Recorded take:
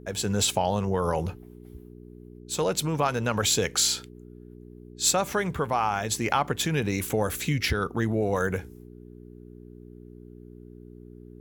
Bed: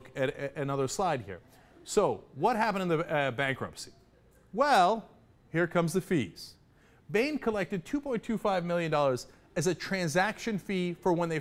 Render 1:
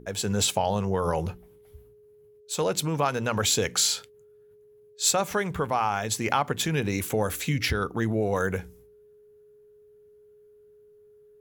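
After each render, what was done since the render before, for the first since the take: de-hum 60 Hz, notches 6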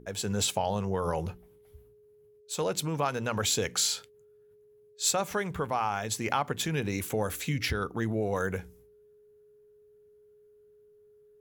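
trim -4 dB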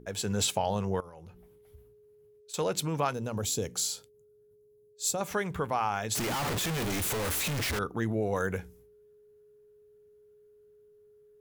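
1.00–2.54 s: compression, threshold -46 dBFS; 3.13–5.21 s: peaking EQ 1.9 kHz -14 dB 2.2 oct; 6.15–7.79 s: one-bit comparator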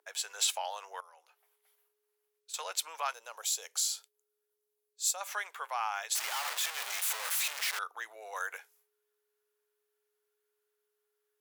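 Bessel high-pass 1.1 kHz, order 6

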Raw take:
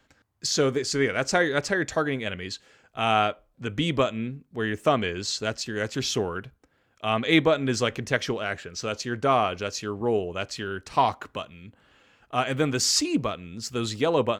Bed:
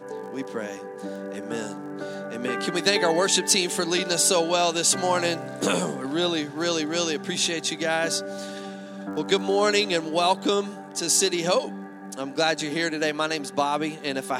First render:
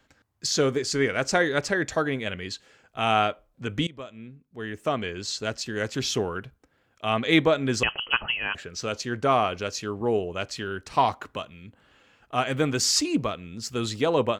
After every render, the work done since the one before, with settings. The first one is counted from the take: 3.87–5.75 s: fade in, from -21.5 dB; 7.83–8.55 s: frequency inversion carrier 3.1 kHz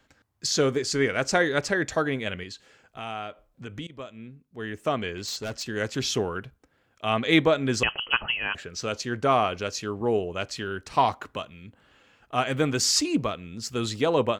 2.43–3.90 s: compression 2:1, threshold -40 dBFS; 5.17–5.64 s: hard clipper -28.5 dBFS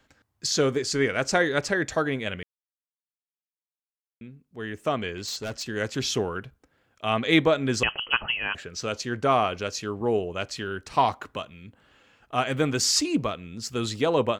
2.43–4.21 s: mute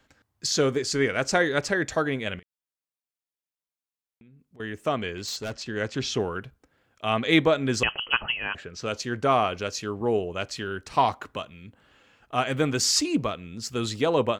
2.39–4.60 s: compression 8:1, threshold -50 dBFS; 5.52–6.20 s: distance through air 66 m; 8.32–8.86 s: treble shelf 4.5 kHz -9.5 dB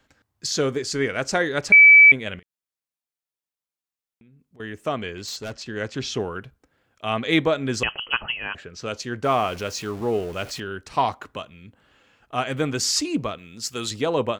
1.72–2.12 s: bleep 2.3 kHz -6.5 dBFS; 9.24–10.60 s: jump at every zero crossing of -36.5 dBFS; 13.38–13.91 s: tilt EQ +2 dB/octave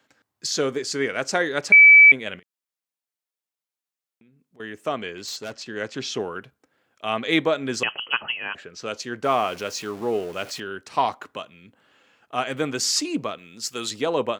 Bessel high-pass 220 Hz, order 2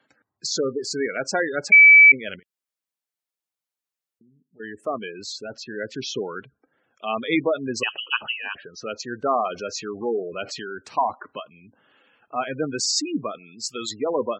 spectral gate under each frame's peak -15 dB strong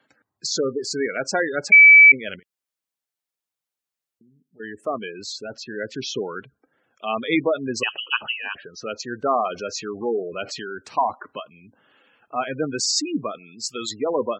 trim +1 dB

